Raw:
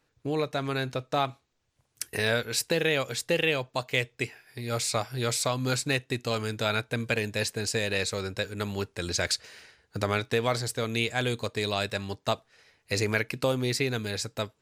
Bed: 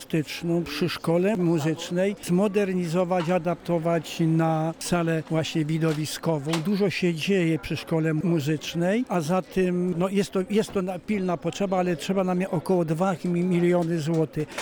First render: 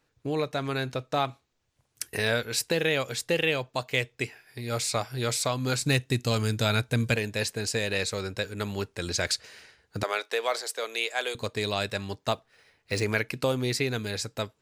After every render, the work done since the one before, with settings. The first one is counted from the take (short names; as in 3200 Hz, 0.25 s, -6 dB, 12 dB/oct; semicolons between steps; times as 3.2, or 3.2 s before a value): 5.81–7.16 tone controls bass +8 dB, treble +6 dB; 10.03–11.35 HPF 440 Hz 24 dB/oct; 12.32–13.03 decimation joined by straight lines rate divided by 3×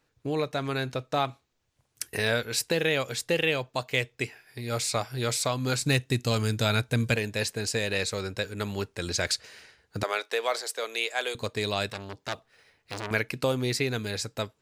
5.11–5.55 short-mantissa float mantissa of 6-bit; 11.9–13.11 core saturation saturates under 3300 Hz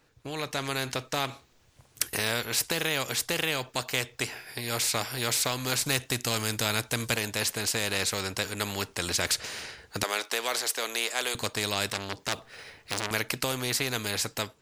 AGC gain up to 8 dB; spectral compressor 2:1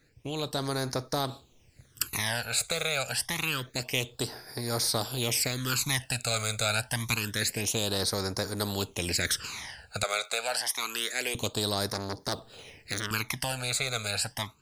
in parallel at -11 dB: soft clip -18.5 dBFS, distortion -16 dB; on the sum: phaser stages 12, 0.27 Hz, lowest notch 300–2800 Hz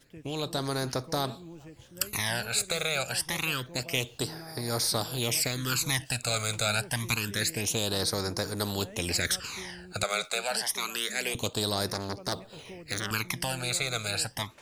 add bed -23.5 dB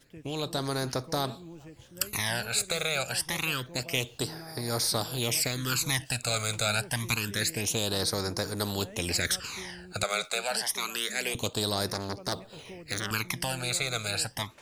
nothing audible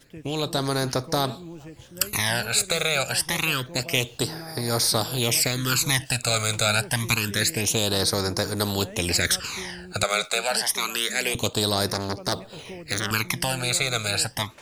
gain +6 dB